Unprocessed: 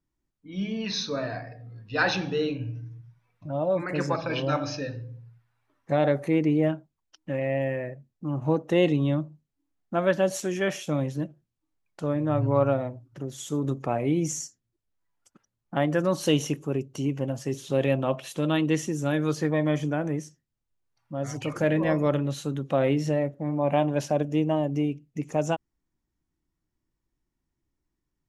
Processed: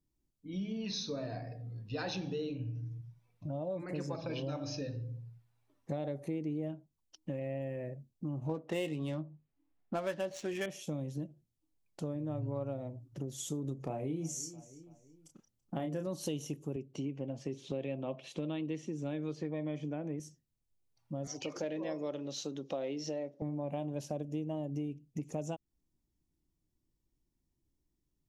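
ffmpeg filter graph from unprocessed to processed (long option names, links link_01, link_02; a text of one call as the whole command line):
ffmpeg -i in.wav -filter_complex "[0:a]asettb=1/sr,asplit=3[link_01][link_02][link_03];[link_01]atrim=end=8.494[link_04];[link_02]atrim=start=8.49:end=10.66,asetpts=PTS-STARTPTS,afade=type=in:duration=0.004:curve=qsin,afade=type=out:start_time=2.166:duration=0.004:curve=qsin,equalizer=frequency=1800:width=0.47:gain=14,asplit=2[link_05][link_06];[link_06]adelay=19,volume=-10.5dB[link_07];[link_05][link_07]amix=inputs=2:normalize=0,atrim=end_sample=95697,adynamicsmooth=sensitivity=3.5:basefreq=2300[link_08];[link_03]atrim=start=10.656[link_09];[link_04][link_08]acrossfade=duration=0.004:curve1=hsin:curve2=qsin[link_10];[link_10][link_09]acrossfade=duration=0.004:curve1=qsin:curve2=hsin,asettb=1/sr,asplit=3[link_11][link_12][link_13];[link_11]atrim=end=13.764[link_14];[link_12]atrim=start=13.76:end=16.07,asetpts=PTS-STARTPTS,afade=type=in:duration=0.004:curve=qsin,afade=type=out:start_time=2.306:duration=0.004:curve=qsin,asplit=2[link_15][link_16];[link_16]adelay=31,volume=-5.5dB[link_17];[link_15][link_17]amix=inputs=2:normalize=0,atrim=end_sample=101871,asplit=2[link_18][link_19];[link_19]adelay=332,lowpass=frequency=4000:poles=1,volume=-23dB,asplit=2[link_20][link_21];[link_21]adelay=332,lowpass=frequency=4000:poles=1,volume=0.43,asplit=2[link_22][link_23];[link_23]adelay=332,lowpass=frequency=4000:poles=1,volume=0.43[link_24];[link_18][link_20][link_22][link_24]amix=inputs=4:normalize=0,atrim=end_sample=101871[link_25];[link_13]atrim=start=16.066[link_26];[link_14][link_25]acrossfade=duration=0.004:curve1=hsin:curve2=qsin[link_27];[link_27][link_26]acrossfade=duration=0.004:curve1=qsin:curve2=hsin,asettb=1/sr,asplit=3[link_28][link_29][link_30];[link_28]atrim=end=16.764[link_31];[link_29]atrim=start=16.76:end=20.2,asetpts=PTS-STARTPTS,afade=type=in:duration=0.004:curve=qsin,afade=type=out:start_time=3.436:duration=0.004:curve=qsin,highpass=150,lowpass=4000,equalizer=frequency=2300:width=4.7:gain=5.5[link_32];[link_30]atrim=start=20.196[link_33];[link_31][link_32]acrossfade=duration=0.004:curve1=hsin:curve2=qsin[link_34];[link_34][link_33]acrossfade=duration=0.004:curve1=qsin:curve2=hsin,asettb=1/sr,asplit=3[link_35][link_36][link_37];[link_35]atrim=end=21.274[link_38];[link_36]atrim=start=21.27:end=23.42,asetpts=PTS-STARTPTS,afade=type=in:duration=0.004:curve=qsin,afade=type=out:start_time=2.146:duration=0.004:curve=qsin,highpass=330,highshelf=frequency=7300:width_type=q:width=3:gain=-10.5[link_39];[link_37]atrim=start=23.416[link_40];[link_38][link_39]acrossfade=duration=0.004:curve1=hsin:curve2=qsin[link_41];[link_41][link_40]acrossfade=duration=0.004:curve1=qsin:curve2=hsin,equalizer=frequency=1500:width=0.85:gain=-12,acompressor=threshold=-36dB:ratio=4" out.wav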